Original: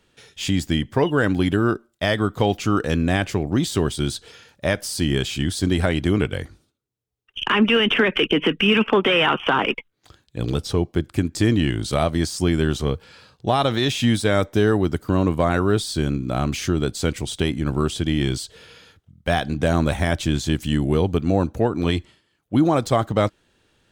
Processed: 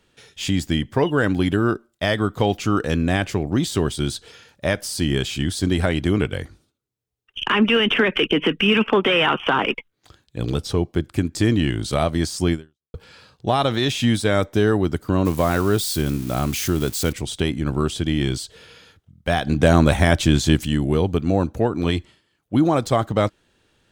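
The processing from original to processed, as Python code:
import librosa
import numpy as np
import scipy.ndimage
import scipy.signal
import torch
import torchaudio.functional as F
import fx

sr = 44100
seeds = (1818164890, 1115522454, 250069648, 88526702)

y = fx.crossing_spikes(x, sr, level_db=-23.0, at=(15.25, 17.13))
y = fx.edit(y, sr, fx.fade_out_span(start_s=12.53, length_s=0.41, curve='exp'),
    fx.clip_gain(start_s=19.47, length_s=1.18, db=5.0), tone=tone)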